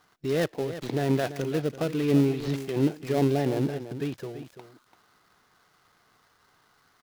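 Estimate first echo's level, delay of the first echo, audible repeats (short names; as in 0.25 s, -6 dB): -12.0 dB, 0.338 s, 1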